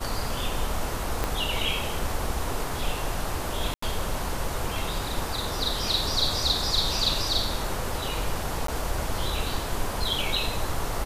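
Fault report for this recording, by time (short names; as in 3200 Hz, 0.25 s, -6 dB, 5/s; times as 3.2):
1.24 pop -11 dBFS
3.74–3.82 gap 84 ms
8.67–8.68 gap 13 ms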